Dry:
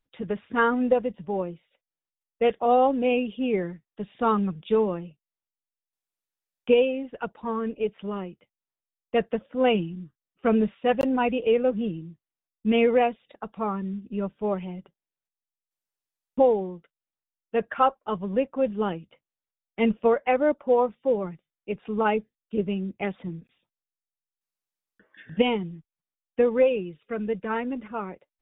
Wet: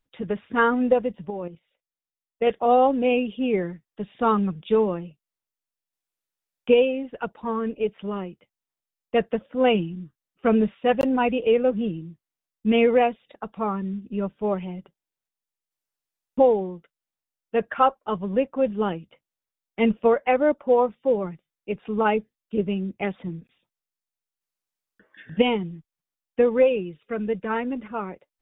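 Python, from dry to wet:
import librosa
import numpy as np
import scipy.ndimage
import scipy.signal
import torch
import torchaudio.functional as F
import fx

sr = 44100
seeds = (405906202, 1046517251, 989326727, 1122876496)

y = fx.level_steps(x, sr, step_db=11, at=(1.3, 2.47))
y = F.gain(torch.from_numpy(y), 2.0).numpy()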